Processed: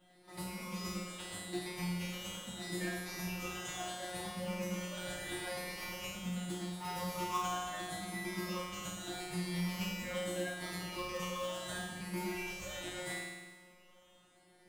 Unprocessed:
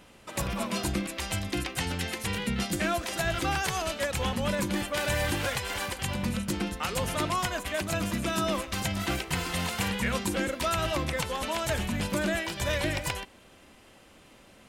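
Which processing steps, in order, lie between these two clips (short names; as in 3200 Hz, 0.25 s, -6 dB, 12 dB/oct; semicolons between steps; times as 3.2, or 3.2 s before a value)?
moving spectral ripple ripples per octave 0.82, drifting +0.77 Hz, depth 10 dB; resonator 180 Hz, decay 1.3 s, mix 100%; reverse echo 51 ms -14 dB; in parallel at -8 dB: sample-and-hold 19×; on the sum: gain +7.5 dB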